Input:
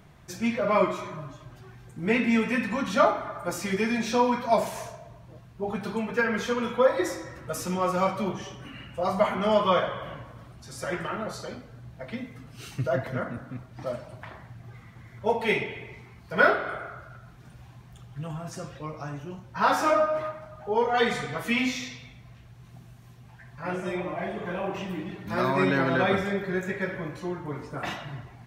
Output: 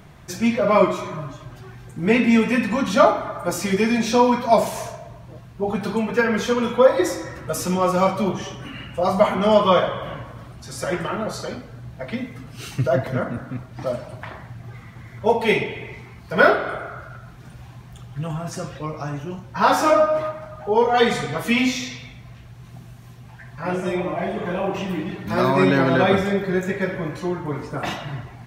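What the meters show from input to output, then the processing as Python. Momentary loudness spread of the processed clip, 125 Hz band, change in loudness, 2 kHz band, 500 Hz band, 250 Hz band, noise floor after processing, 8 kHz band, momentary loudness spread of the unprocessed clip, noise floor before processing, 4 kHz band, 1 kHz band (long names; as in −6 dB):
19 LU, +7.5 dB, +6.5 dB, +4.0 dB, +7.0 dB, +7.5 dB, −43 dBFS, +7.5 dB, 19 LU, −50 dBFS, +6.5 dB, +6.0 dB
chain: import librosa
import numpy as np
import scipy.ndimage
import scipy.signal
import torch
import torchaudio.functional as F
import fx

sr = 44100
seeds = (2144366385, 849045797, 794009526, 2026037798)

y = fx.dynamic_eq(x, sr, hz=1700.0, q=1.1, threshold_db=-41.0, ratio=4.0, max_db=-4)
y = y * librosa.db_to_amplitude(7.5)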